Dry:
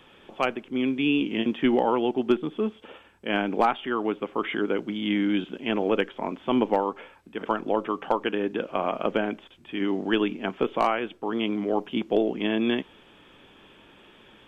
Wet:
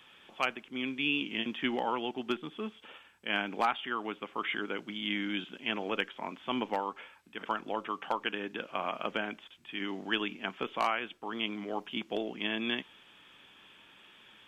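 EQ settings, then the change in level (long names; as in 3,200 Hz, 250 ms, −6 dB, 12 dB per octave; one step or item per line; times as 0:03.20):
low-shelf EQ 61 Hz −9.5 dB
low-shelf EQ 150 Hz −10.5 dB
parametric band 430 Hz −11.5 dB 2.3 octaves
0.0 dB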